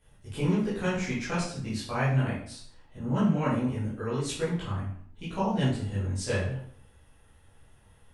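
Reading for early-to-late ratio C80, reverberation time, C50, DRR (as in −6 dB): 7.0 dB, 0.60 s, 2.5 dB, −11.0 dB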